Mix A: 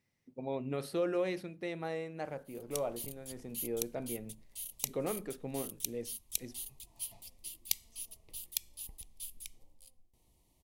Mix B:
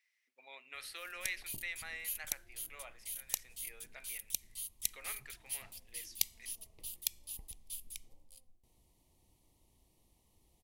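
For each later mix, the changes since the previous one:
speech: add resonant high-pass 2 kHz, resonance Q 2; background: entry -1.50 s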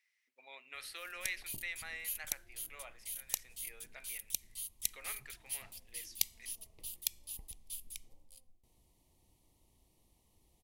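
no change

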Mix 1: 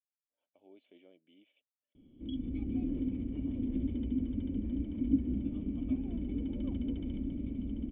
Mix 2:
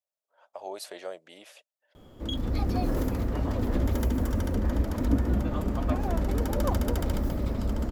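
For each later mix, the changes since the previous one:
speech +3.5 dB; master: remove cascade formant filter i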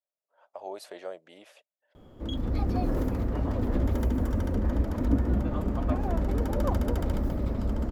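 master: add treble shelf 2.6 kHz -8.5 dB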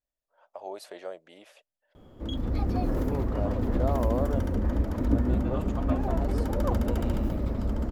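second voice: unmuted

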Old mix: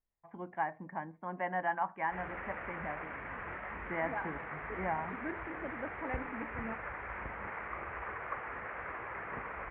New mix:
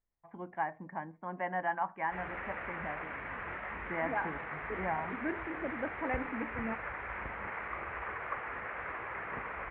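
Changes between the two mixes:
second voice +4.5 dB; background: remove distance through air 260 m

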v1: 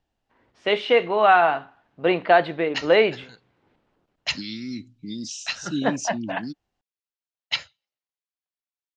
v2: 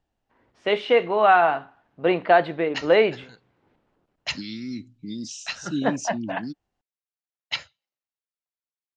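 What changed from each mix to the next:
master: add peaking EQ 3.9 kHz -3.5 dB 2 oct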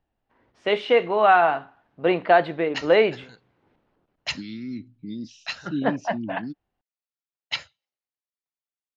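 second voice: add distance through air 260 m

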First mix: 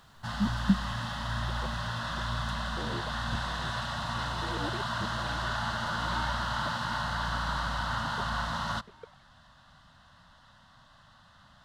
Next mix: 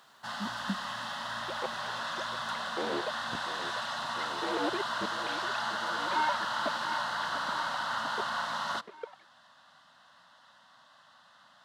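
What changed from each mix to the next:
second sound +8.5 dB; master: add high-pass 360 Hz 12 dB/octave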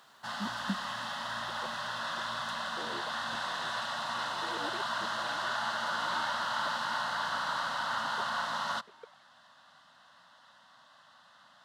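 second sound -10.0 dB

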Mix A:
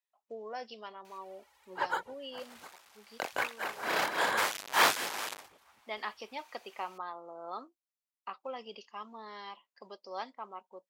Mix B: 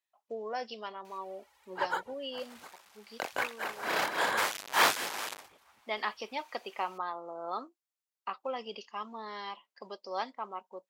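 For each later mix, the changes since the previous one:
speech +4.5 dB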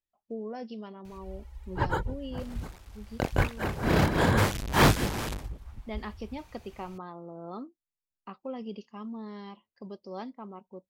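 speech -9.5 dB; master: remove high-pass 770 Hz 12 dB/octave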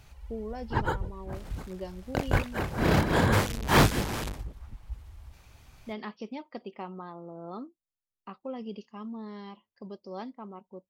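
background: entry -1.05 s

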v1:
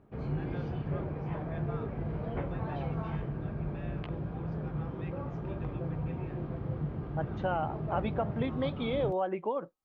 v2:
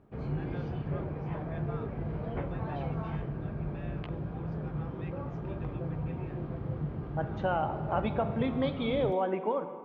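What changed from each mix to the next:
second voice: send on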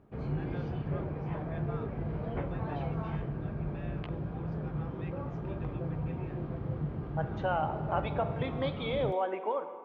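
second voice: add high-pass 440 Hz 12 dB/octave

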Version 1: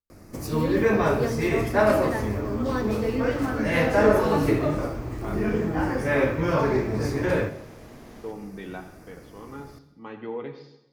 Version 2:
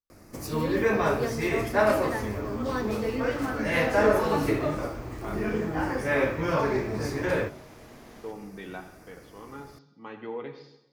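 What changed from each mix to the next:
first sound: send off; master: add bass shelf 450 Hz -5 dB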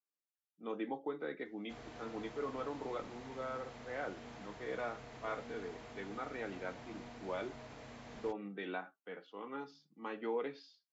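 speech: add high-pass 200 Hz 24 dB/octave; first sound: muted; reverb: off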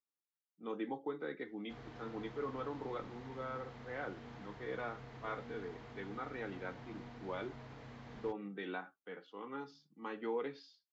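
background: add distance through air 130 m; master: add graphic EQ with 31 bands 125 Hz +6 dB, 630 Hz -6 dB, 2.5 kHz -3 dB

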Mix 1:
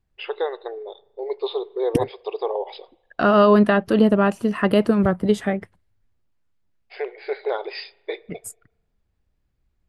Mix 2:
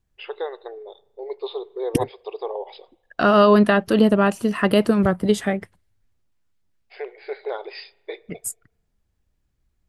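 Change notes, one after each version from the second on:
first voice -4.0 dB; second voice: add treble shelf 3.4 kHz +8 dB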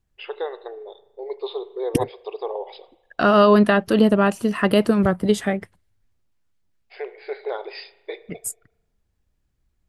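first voice: send +7.0 dB

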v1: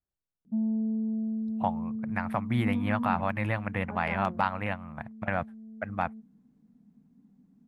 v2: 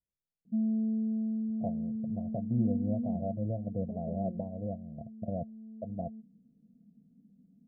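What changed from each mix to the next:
second voice: remove steep low-pass 1.7 kHz 96 dB/octave; master: add rippled Chebyshev low-pass 700 Hz, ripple 6 dB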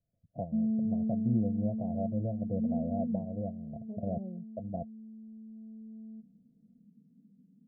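first voice: entry -1.25 s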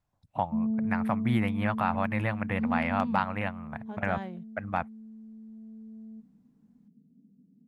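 master: remove rippled Chebyshev low-pass 700 Hz, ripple 6 dB

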